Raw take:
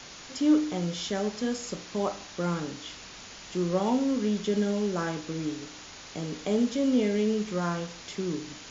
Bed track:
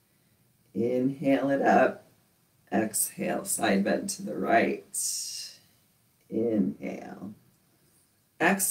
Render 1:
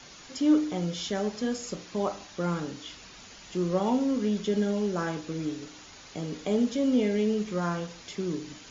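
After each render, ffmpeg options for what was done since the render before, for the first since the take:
-af "afftdn=nr=6:nf=-46"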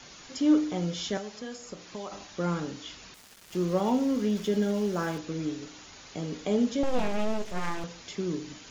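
-filter_complex "[0:a]asettb=1/sr,asplit=3[s0][s1][s2];[s0]atrim=end=1.174[s3];[s1]atrim=start=1.17:end=2.12,asetpts=PTS-STARTPTS,afade=t=in:d=0.004:c=qsin,afade=t=out:st=0.946:d=0.004:c=qsin,acrossover=split=510|1700[s4][s5][s6];[s4]acompressor=threshold=0.00794:ratio=4[s7];[s5]acompressor=threshold=0.00708:ratio=4[s8];[s6]acompressor=threshold=0.00501:ratio=4[s9];[s7][s8][s9]amix=inputs=3:normalize=0[s10];[s2]atrim=start=2.116[s11];[s3][s10]acrossfade=d=0.004:c1=hsin:c2=qsin[s12];[s12][s11]acrossfade=d=0.004:c1=qsin:c2=hsin,asettb=1/sr,asplit=3[s13][s14][s15];[s13]atrim=end=3.144[s16];[s14]atrim=start=3.14:end=5.18,asetpts=PTS-STARTPTS,afade=t=in:d=0.004:c=qsin,afade=t=out:st=2.036:d=0.004:c=qsin,aeval=exprs='val(0)*gte(abs(val(0)),0.00708)':c=same[s17];[s15]atrim=start=5.176[s18];[s16][s17]acrossfade=d=0.004:c1=hsin:c2=qsin[s19];[s19][s18]acrossfade=d=0.004:c1=qsin:c2=hsin,asettb=1/sr,asplit=3[s20][s21][s22];[s20]atrim=end=6.834[s23];[s21]atrim=start=6.83:end=7.84,asetpts=PTS-STARTPTS,afade=t=in:d=0.004:c=qsin,afade=t=out:st=1.006:d=0.004:c=qsin,aeval=exprs='abs(val(0))':c=same[s24];[s22]atrim=start=7.836[s25];[s23][s24]acrossfade=d=0.004:c1=hsin:c2=qsin[s26];[s26][s25]acrossfade=d=0.004:c1=qsin:c2=hsin"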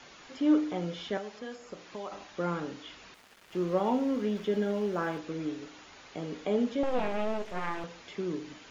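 -filter_complex "[0:a]acrossover=split=3600[s0][s1];[s1]acompressor=threshold=0.00224:ratio=4:attack=1:release=60[s2];[s0][s2]amix=inputs=2:normalize=0,bass=f=250:g=-7,treble=f=4000:g=-6"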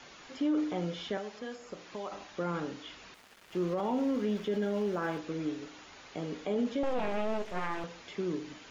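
-af "alimiter=limit=0.0668:level=0:latency=1:release=16"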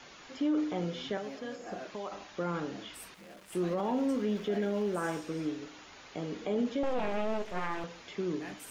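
-filter_complex "[1:a]volume=0.075[s0];[0:a][s0]amix=inputs=2:normalize=0"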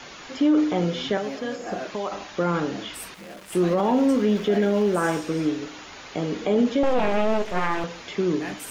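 -af "volume=3.35"

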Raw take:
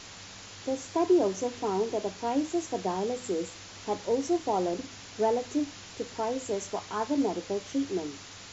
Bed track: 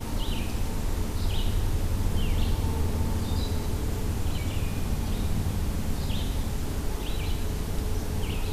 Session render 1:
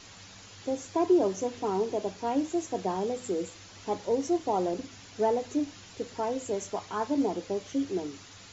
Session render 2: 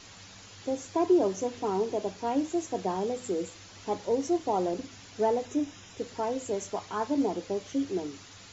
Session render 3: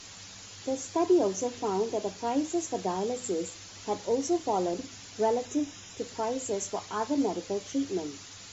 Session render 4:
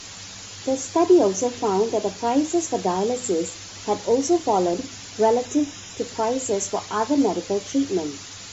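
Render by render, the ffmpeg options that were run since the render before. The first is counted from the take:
-af "afftdn=nr=6:nf=-46"
-filter_complex "[0:a]asettb=1/sr,asplit=3[s0][s1][s2];[s0]atrim=end=5.454[s3];[s1]atrim=start=5.45:end=5.99,asetpts=PTS-STARTPTS,afade=t=in:d=0.004:c=qsin,afade=t=out:st=0.536:d=0.004:c=qsin,asuperstop=centerf=4400:order=4:qfactor=6.1[s4];[s2]atrim=start=5.986[s5];[s3][s4]acrossfade=d=0.004:c1=hsin:c2=qsin[s6];[s6][s5]acrossfade=d=0.004:c1=qsin:c2=hsin"
-af "aemphasis=mode=production:type=cd"
-af "volume=2.51"

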